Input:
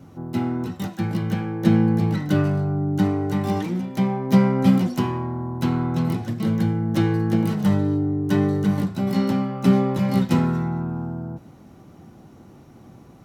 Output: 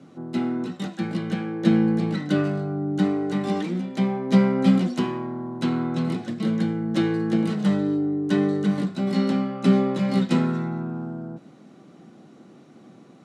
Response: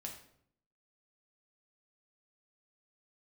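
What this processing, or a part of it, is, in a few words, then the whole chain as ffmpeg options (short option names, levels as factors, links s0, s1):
television speaker: -af "highpass=f=170:w=0.5412,highpass=f=170:w=1.3066,equalizer=f=900:t=q:w=4:g=-7,equalizer=f=3800:t=q:w=4:g=3,equalizer=f=5800:t=q:w=4:g=-4,lowpass=f=8900:w=0.5412,lowpass=f=8900:w=1.3066"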